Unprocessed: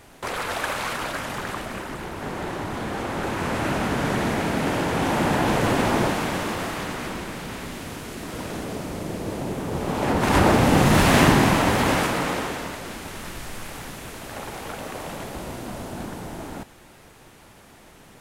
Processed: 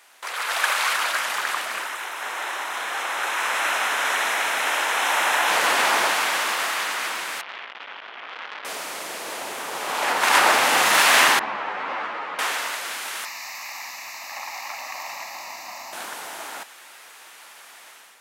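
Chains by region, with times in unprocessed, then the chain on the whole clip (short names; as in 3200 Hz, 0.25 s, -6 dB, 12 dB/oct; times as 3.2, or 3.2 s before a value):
1.87–5.51 HPF 450 Hz 6 dB/oct + notch 4600 Hz, Q 5.8
7.41–8.65 brick-wall FIR low-pass 3500 Hz + low shelf 75 Hz -10.5 dB + core saturation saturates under 2100 Hz
11.39–12.39 tape spacing loss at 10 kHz 44 dB + ensemble effect
13.25–15.93 fixed phaser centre 2200 Hz, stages 8 + bands offset in time highs, lows 80 ms, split 160 Hz
whole clip: HPF 1100 Hz 12 dB/oct; AGC gain up to 8.5 dB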